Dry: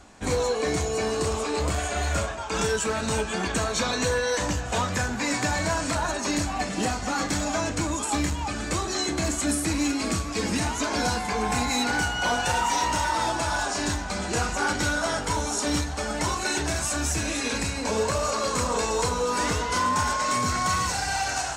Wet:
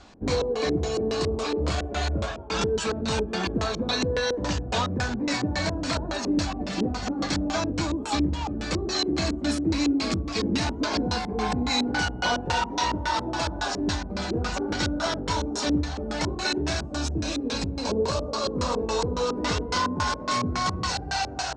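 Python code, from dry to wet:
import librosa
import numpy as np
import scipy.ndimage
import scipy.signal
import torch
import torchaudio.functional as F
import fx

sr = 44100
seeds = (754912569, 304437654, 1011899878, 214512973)

y = fx.peak_eq(x, sr, hz=2000.0, db=fx.steps((0.0, -2.0), (16.86, -10.0), (18.58, -3.0)), octaves=0.86)
y = fx.filter_lfo_lowpass(y, sr, shape='square', hz=3.6, low_hz=360.0, high_hz=4500.0, q=1.7)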